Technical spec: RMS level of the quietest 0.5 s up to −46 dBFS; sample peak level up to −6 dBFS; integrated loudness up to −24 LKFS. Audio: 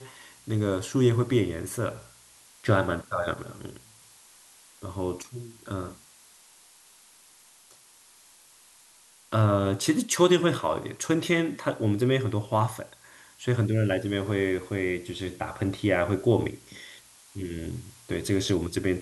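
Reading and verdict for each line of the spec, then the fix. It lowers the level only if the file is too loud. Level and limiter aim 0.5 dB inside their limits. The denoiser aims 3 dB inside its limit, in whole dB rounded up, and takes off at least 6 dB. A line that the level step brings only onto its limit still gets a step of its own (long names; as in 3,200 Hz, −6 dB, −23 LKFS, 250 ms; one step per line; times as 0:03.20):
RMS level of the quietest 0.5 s −56 dBFS: in spec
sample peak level −8.0 dBFS: in spec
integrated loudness −27.0 LKFS: in spec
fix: no processing needed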